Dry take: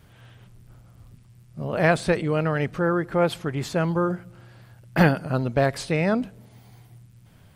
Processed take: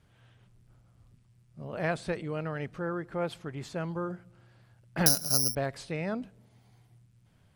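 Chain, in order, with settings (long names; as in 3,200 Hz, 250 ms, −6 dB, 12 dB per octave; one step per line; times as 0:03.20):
low-pass filter 11,000 Hz 12 dB per octave
0:05.06–0:05.55: bad sample-rate conversion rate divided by 8×, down filtered, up zero stuff
level −11 dB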